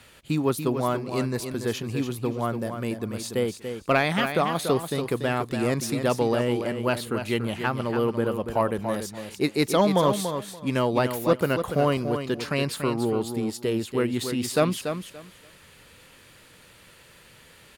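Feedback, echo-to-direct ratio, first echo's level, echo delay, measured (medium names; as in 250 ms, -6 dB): 19%, -8.0 dB, -8.0 dB, 287 ms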